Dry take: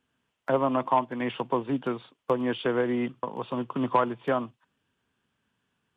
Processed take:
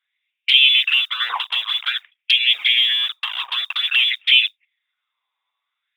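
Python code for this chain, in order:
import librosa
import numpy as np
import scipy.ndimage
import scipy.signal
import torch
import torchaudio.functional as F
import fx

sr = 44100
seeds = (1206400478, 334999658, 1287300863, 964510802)

p1 = fx.fuzz(x, sr, gain_db=46.0, gate_db=-42.0)
p2 = x + (p1 * 10.0 ** (-5.0 / 20.0))
p3 = fx.freq_invert(p2, sr, carrier_hz=3700)
p4 = fx.env_flanger(p3, sr, rest_ms=8.9, full_db=-13.0)
p5 = fx.mod_noise(p4, sr, seeds[0], snr_db=32)
p6 = fx.filter_lfo_highpass(p5, sr, shape='sine', hz=0.51, low_hz=990.0, high_hz=2500.0, q=4.9)
y = p6 * 10.0 ** (-3.0 / 20.0)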